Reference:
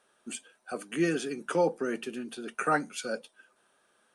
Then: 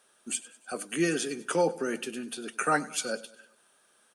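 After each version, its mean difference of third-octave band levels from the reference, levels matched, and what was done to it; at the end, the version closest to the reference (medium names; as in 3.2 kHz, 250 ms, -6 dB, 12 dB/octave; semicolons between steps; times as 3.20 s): 3.5 dB: treble shelf 3.9 kHz +10 dB; on a send: feedback delay 99 ms, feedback 51%, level -19 dB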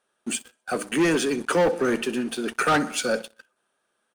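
6.0 dB: feedback delay 63 ms, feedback 55%, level -19.5 dB; waveshaping leveller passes 3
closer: first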